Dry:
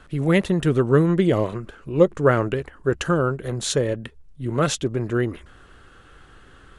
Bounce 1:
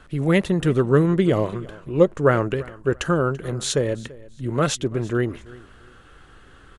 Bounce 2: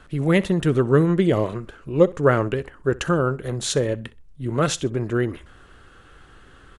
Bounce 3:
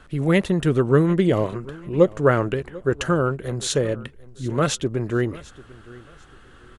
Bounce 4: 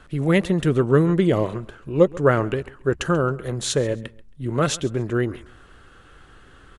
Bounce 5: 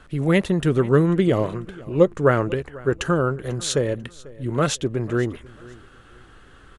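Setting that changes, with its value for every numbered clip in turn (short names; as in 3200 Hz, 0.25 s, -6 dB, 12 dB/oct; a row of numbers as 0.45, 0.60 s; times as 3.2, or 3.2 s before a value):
feedback echo, time: 337, 63, 744, 136, 493 ms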